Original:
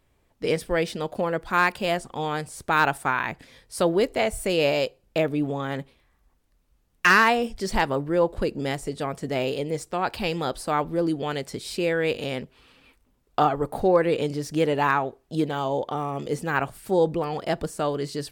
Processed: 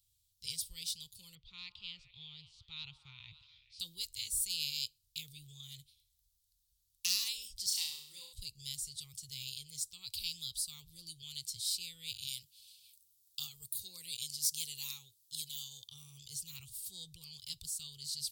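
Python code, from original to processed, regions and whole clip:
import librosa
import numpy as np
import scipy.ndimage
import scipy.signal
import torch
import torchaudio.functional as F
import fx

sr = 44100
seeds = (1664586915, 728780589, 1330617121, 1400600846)

y = fx.chain(x, sr, fx.lowpass(hz=3300.0, slope=24),
    fx.echo_stepped(ms=139, hz=760.0, octaves=0.7, feedback_pct=70, wet_db=-8), at=(1.35, 3.8))
y = fx.chain(y, sr, fx.highpass(hz=380.0, slope=12),
    fx.peak_eq(hz=910.0, db=2.0, octaves=2.2),
    fx.room_flutter(wall_m=5.7, rt60_s=0.67), at=(7.66, 8.33))
y = fx.chain(y, sr, fx.highpass(hz=200.0, slope=6),
    fx.high_shelf(hz=5800.0, db=10.0), at=(12.27, 15.88))
y = scipy.signal.sosfilt(scipy.signal.ellip(3, 1.0, 40, [110.0, 3800.0], 'bandstop', fs=sr, output='sos'), y)
y = fx.tilt_eq(y, sr, slope=2.5)
y = y * 10.0 ** (-4.5 / 20.0)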